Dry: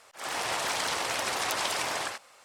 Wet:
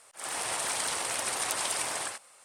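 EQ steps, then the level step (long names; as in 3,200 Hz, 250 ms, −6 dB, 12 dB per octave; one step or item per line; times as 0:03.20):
parametric band 9,100 Hz +14.5 dB 0.47 octaves
−4.0 dB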